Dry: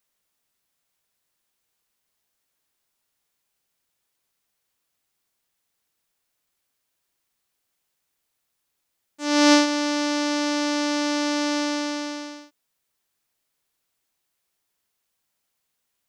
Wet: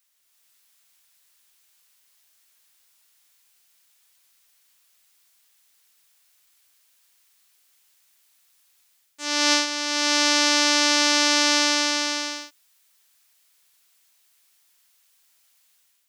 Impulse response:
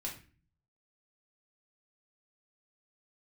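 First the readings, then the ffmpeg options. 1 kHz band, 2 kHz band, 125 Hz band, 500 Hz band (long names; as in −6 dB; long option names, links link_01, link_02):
+1.0 dB, +5.0 dB, can't be measured, −3.0 dB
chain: -af "tiltshelf=frequency=890:gain=-8.5,dynaudnorm=framelen=130:gausssize=5:maxgain=7dB,volume=-1dB"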